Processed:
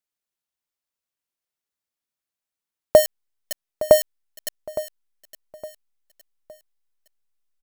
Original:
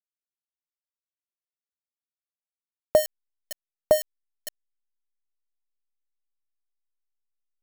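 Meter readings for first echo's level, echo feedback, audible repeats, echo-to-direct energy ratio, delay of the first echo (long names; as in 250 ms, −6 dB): −15.0 dB, 36%, 3, −14.5 dB, 863 ms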